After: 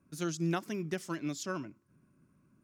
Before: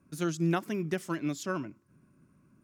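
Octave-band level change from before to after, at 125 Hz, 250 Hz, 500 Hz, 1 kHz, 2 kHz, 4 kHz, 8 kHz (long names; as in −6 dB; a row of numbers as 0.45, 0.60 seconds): −4.0, −4.0, −4.0, −4.0, −3.5, −0.5, +0.5 decibels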